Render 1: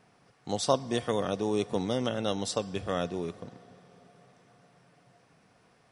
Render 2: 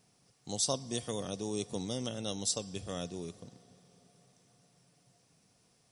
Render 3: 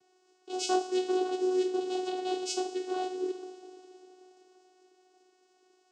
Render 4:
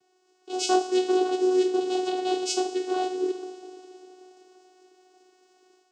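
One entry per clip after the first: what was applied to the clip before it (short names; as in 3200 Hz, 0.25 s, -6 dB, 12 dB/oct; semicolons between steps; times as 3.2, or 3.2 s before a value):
EQ curve 140 Hz 0 dB, 1600 Hz -9 dB, 6600 Hz +10 dB; gain -4.5 dB
two-slope reverb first 0.48 s, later 4.7 s, from -20 dB, DRR 1.5 dB; vocoder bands 8, saw 369 Hz; gain +4.5 dB
AGC gain up to 6 dB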